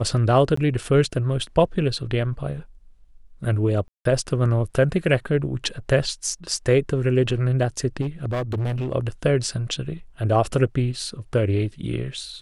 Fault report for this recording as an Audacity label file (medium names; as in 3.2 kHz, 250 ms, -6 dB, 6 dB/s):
0.560000	0.570000	dropout 14 ms
3.880000	4.050000	dropout 173 ms
8.010000	8.930000	clipped -21.5 dBFS